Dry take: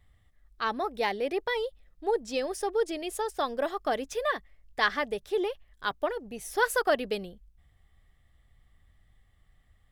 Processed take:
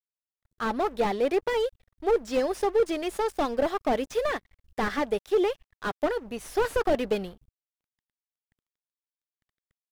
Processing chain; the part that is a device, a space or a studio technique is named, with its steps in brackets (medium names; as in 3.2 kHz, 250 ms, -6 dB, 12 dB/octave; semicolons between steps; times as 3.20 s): early transistor amplifier (crossover distortion -52.5 dBFS; slew-rate limiter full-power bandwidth 30 Hz); trim +6 dB